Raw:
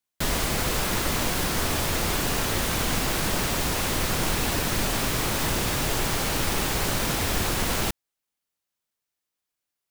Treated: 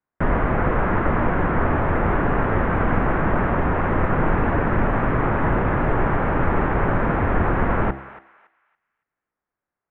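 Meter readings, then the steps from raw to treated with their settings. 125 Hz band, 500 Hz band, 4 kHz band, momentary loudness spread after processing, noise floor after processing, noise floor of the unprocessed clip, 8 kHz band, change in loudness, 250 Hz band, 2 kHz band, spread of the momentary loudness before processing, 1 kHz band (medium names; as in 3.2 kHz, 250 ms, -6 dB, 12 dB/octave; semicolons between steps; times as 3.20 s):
+7.5 dB, +7.5 dB, under -20 dB, 1 LU, under -85 dBFS, -85 dBFS, under -40 dB, +3.5 dB, +7.5 dB, +3.5 dB, 0 LU, +8.0 dB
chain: inverse Chebyshev low-pass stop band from 4.3 kHz, stop band 50 dB; de-hum 67 Hz, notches 12; on a send: thinning echo 281 ms, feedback 32%, high-pass 1.2 kHz, level -12 dB; on the sum: trim +8 dB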